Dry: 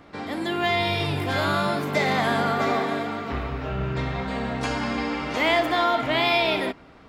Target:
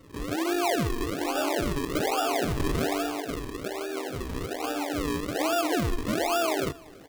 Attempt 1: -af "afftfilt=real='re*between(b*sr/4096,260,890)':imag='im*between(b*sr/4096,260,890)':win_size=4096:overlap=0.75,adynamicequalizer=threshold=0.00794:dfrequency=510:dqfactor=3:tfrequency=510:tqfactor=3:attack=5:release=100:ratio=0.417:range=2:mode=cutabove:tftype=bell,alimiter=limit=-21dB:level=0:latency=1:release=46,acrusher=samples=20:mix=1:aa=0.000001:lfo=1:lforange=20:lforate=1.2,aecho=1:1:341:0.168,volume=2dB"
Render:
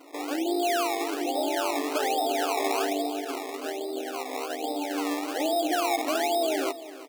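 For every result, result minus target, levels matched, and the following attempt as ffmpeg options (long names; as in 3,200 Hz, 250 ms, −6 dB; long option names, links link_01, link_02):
sample-and-hold swept by an LFO: distortion −12 dB; echo-to-direct +8.5 dB
-af "afftfilt=real='re*between(b*sr/4096,260,890)':imag='im*between(b*sr/4096,260,890)':win_size=4096:overlap=0.75,adynamicequalizer=threshold=0.00794:dfrequency=510:dqfactor=3:tfrequency=510:tqfactor=3:attack=5:release=100:ratio=0.417:range=2:mode=cutabove:tftype=bell,alimiter=limit=-21dB:level=0:latency=1:release=46,acrusher=samples=42:mix=1:aa=0.000001:lfo=1:lforange=42:lforate=1.2,aecho=1:1:341:0.168,volume=2dB"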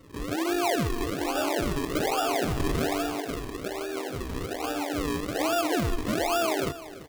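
echo-to-direct +8.5 dB
-af "afftfilt=real='re*between(b*sr/4096,260,890)':imag='im*between(b*sr/4096,260,890)':win_size=4096:overlap=0.75,adynamicequalizer=threshold=0.00794:dfrequency=510:dqfactor=3:tfrequency=510:tqfactor=3:attack=5:release=100:ratio=0.417:range=2:mode=cutabove:tftype=bell,alimiter=limit=-21dB:level=0:latency=1:release=46,acrusher=samples=42:mix=1:aa=0.000001:lfo=1:lforange=42:lforate=1.2,aecho=1:1:341:0.0631,volume=2dB"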